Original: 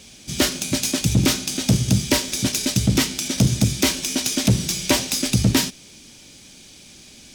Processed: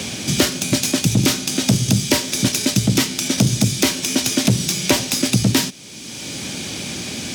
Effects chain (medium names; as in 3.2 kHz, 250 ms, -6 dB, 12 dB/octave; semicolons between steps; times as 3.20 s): high-pass 90 Hz 24 dB/octave; three bands compressed up and down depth 70%; trim +2.5 dB